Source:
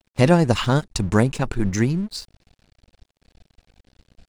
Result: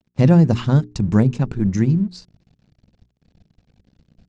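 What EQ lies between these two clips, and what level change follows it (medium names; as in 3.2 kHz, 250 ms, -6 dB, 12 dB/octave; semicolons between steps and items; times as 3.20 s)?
Chebyshev low-pass 6.6 kHz, order 3; peaking EQ 160 Hz +14 dB 2.2 oct; hum notches 60/120/180/240/300/360/420 Hz; -7.0 dB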